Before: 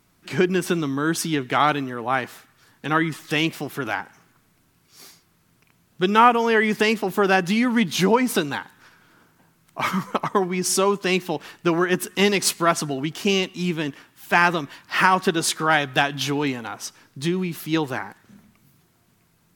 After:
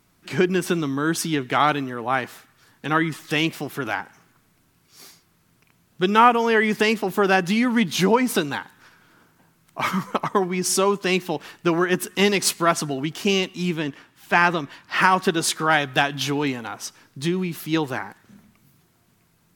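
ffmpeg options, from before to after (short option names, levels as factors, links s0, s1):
-filter_complex "[0:a]asettb=1/sr,asplit=3[s0][s1][s2];[s0]atrim=end=13.794[s3];[s1]atrim=start=13.79:end=15.02,asetpts=PTS-STARTPTS,afade=t=in:d=0.004:c=qsin,afade=t=out:st=1.226:d=0.004:c=qsin,highshelf=f=8300:g=-9[s4];[s2]atrim=start=15.016[s5];[s3][s4]acrossfade=d=0.004:c1=hsin:c2=qsin[s6];[s6][s5]acrossfade=d=0.004:c1=qsin:c2=hsin"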